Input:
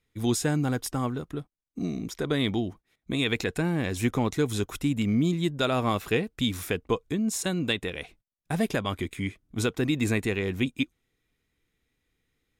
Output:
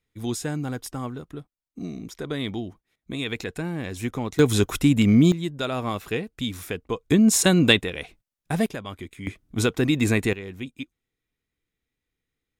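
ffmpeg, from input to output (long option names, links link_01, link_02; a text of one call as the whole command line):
ffmpeg -i in.wav -af "asetnsamples=nb_out_samples=441:pad=0,asendcmd='4.39 volume volume 8dB;5.32 volume volume -2dB;7.1 volume volume 10.5dB;7.81 volume volume 3dB;8.66 volume volume -6dB;9.27 volume volume 4.5dB;10.33 volume volume -7.5dB',volume=-3dB" out.wav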